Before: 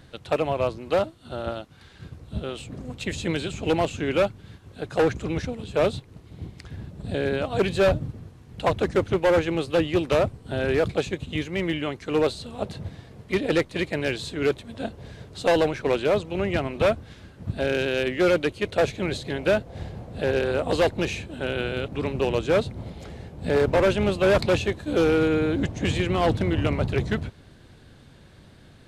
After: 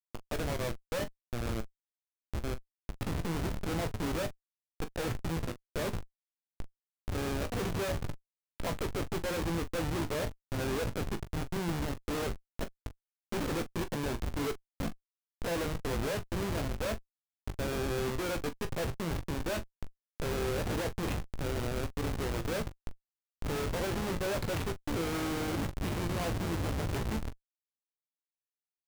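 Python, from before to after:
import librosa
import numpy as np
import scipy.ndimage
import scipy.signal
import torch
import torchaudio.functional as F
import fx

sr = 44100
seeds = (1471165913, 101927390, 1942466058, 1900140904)

y = fx.low_shelf(x, sr, hz=400.0, db=-3.0, at=(0.85, 1.43))
y = fx.schmitt(y, sr, flips_db=-26.0)
y = fx.room_early_taps(y, sr, ms=(18, 41), db=(-9.5, -13.5))
y = F.gain(torch.from_numpy(y), -7.5).numpy()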